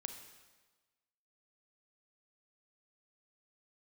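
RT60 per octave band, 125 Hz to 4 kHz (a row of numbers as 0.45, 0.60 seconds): 1.3, 1.2, 1.3, 1.3, 1.2, 1.2 seconds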